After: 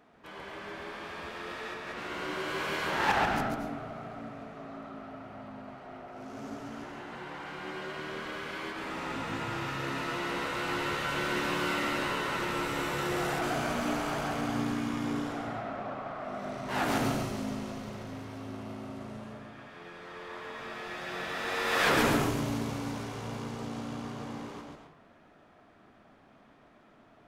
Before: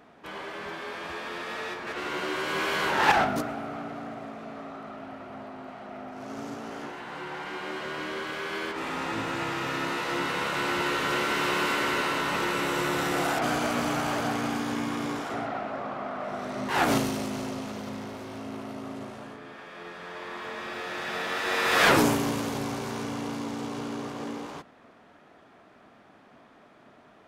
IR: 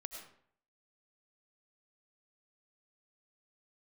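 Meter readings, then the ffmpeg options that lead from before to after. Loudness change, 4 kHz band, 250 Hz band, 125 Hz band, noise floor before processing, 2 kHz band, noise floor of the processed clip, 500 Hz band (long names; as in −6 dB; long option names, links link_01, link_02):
−4.5 dB, −5.0 dB, −3.5 dB, −0.5 dB, −56 dBFS, −4.5 dB, −59 dBFS, −4.0 dB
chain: -filter_complex "[0:a]asplit=2[link_01][link_02];[link_02]bass=frequency=250:gain=5,treble=frequency=4000:gain=-2[link_03];[1:a]atrim=start_sample=2205,lowshelf=frequency=88:gain=9.5,adelay=138[link_04];[link_03][link_04]afir=irnorm=-1:irlink=0,volume=1.5dB[link_05];[link_01][link_05]amix=inputs=2:normalize=0,volume=-7dB"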